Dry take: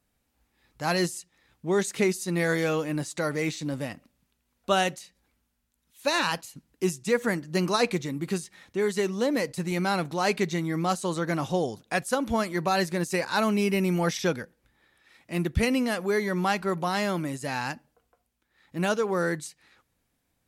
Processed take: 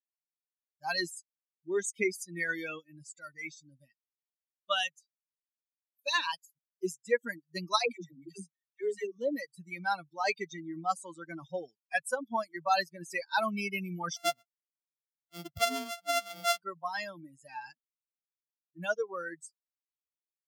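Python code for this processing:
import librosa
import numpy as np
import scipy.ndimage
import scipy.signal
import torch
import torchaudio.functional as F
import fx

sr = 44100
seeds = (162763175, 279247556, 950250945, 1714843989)

y = fx.peak_eq(x, sr, hz=510.0, db=-5.0, octaves=2.5, at=(2.79, 6.13))
y = fx.dispersion(y, sr, late='lows', ms=92.0, hz=360.0, at=(7.79, 9.19))
y = fx.sample_sort(y, sr, block=64, at=(14.16, 16.61))
y = fx.bin_expand(y, sr, power=3.0)
y = fx.weighting(y, sr, curve='A')
y = y * 10.0 ** (3.0 / 20.0)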